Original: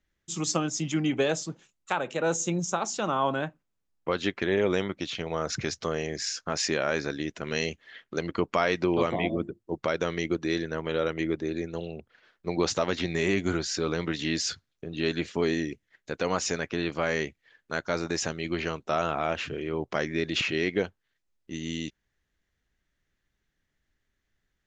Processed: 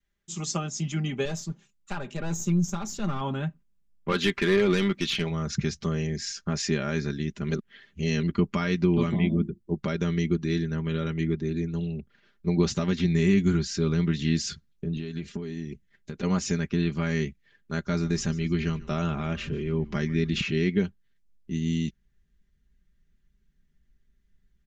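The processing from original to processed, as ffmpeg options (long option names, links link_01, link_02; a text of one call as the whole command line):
ffmpeg -i in.wav -filter_complex "[0:a]asettb=1/sr,asplit=3[link_01][link_02][link_03];[link_01]atrim=end=1.254[link_04];[link_02]atrim=start=1.25:end=3.21,asetpts=PTS-STARTPTS,afade=type=in:duration=0.004:curve=qsin,afade=type=out:start_time=1.956:duration=0.004:curve=qsin,aeval=exprs='(tanh(14.1*val(0)+0.3)-tanh(0.3))/14.1':channel_layout=same[link_05];[link_03]atrim=start=3.206[link_06];[link_04][link_05]acrossfade=duration=0.004:curve1=hsin:curve2=qsin[link_07];[link_07][link_06]acrossfade=duration=0.004:curve1=qsin:curve2=hsin,asplit=3[link_08][link_09][link_10];[link_08]afade=type=out:start_time=4.08:duration=0.02[link_11];[link_09]asplit=2[link_12][link_13];[link_13]highpass=frequency=720:poles=1,volume=18dB,asoftclip=type=tanh:threshold=-11.5dB[link_14];[link_12][link_14]amix=inputs=2:normalize=0,lowpass=frequency=5500:poles=1,volume=-6dB,afade=type=in:start_time=4.08:duration=0.02,afade=type=out:start_time=5.29:duration=0.02[link_15];[link_10]afade=type=in:start_time=5.29:duration=0.02[link_16];[link_11][link_15][link_16]amix=inputs=3:normalize=0,asettb=1/sr,asplit=3[link_17][link_18][link_19];[link_17]atrim=end=14.974[link_20];[link_18]atrim=start=14.97:end=16.23,asetpts=PTS-STARTPTS,afade=type=in:duration=0.004:curve=qsin,afade=type=out:start_time=1.256:duration=0.004:curve=qsin,acompressor=threshold=-34dB:ratio=8:attack=3.2:release=140:knee=1:detection=peak[link_21];[link_19]atrim=start=16.226[link_22];[link_20][link_21]acrossfade=duration=0.004:curve1=hsin:curve2=qsin[link_23];[link_23][link_22]acrossfade=duration=0.004:curve1=qsin:curve2=hsin,asettb=1/sr,asplit=3[link_24][link_25][link_26];[link_24]atrim=end=17.724[link_27];[link_25]atrim=start=17.72:end=20.44,asetpts=PTS-STARTPTS,afade=type=in:duration=0.004:curve=qsin,afade=type=out:start_time=2.716:duration=0.004:curve=qsin,asplit=4[link_28][link_29][link_30][link_31];[link_29]adelay=143,afreqshift=-100,volume=-20dB[link_32];[link_30]adelay=286,afreqshift=-200,volume=-29.1dB[link_33];[link_31]adelay=429,afreqshift=-300,volume=-38.2dB[link_34];[link_28][link_32][link_33][link_34]amix=inputs=4:normalize=0,atrim=end_sample=119952[link_35];[link_26]atrim=start=20.436[link_36];[link_27][link_35]acrossfade=duration=0.004:curve1=hsin:curve2=qsin[link_37];[link_37][link_36]acrossfade=duration=0.004:curve1=qsin:curve2=hsin,asplit=3[link_38][link_39][link_40];[link_38]atrim=end=7.492[link_41];[link_39]atrim=start=7.488:end=8.232,asetpts=PTS-STARTPTS,areverse[link_42];[link_40]atrim=start=8.228[link_43];[link_41][link_42]acrossfade=duration=0.004:curve1=hsin:curve2=hsin[link_44];[link_44][link_43]acrossfade=duration=0.004:curve1=hsin:curve2=hsin,asubboost=boost=6:cutoff=250,aecho=1:1:5:0.63,adynamicequalizer=threshold=0.0141:dfrequency=580:dqfactor=1.2:tfrequency=580:tqfactor=1.2:attack=5:release=100:ratio=0.375:range=3:mode=cutabove:tftype=bell,volume=-4dB" out.wav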